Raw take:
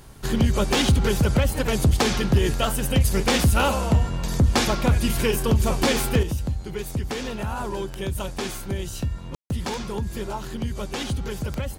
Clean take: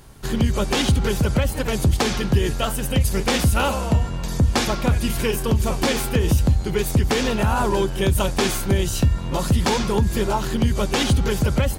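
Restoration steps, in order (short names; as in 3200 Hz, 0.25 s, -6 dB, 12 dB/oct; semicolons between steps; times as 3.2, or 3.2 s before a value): clip repair -12.5 dBFS; de-click; room tone fill 9.35–9.5; gain correction +9 dB, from 6.23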